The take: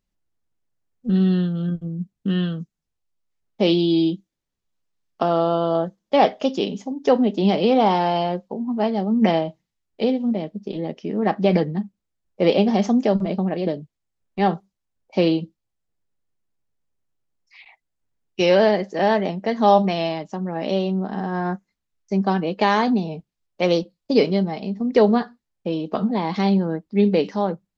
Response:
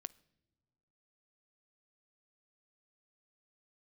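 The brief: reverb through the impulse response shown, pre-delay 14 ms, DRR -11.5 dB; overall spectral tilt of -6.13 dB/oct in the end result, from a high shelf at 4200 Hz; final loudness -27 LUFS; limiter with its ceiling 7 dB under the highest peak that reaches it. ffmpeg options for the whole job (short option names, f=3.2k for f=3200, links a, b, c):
-filter_complex "[0:a]highshelf=f=4.2k:g=-6,alimiter=limit=-11.5dB:level=0:latency=1,asplit=2[a][b];[1:a]atrim=start_sample=2205,adelay=14[c];[b][c]afir=irnorm=-1:irlink=0,volume=15.5dB[d];[a][d]amix=inputs=2:normalize=0,volume=-15dB"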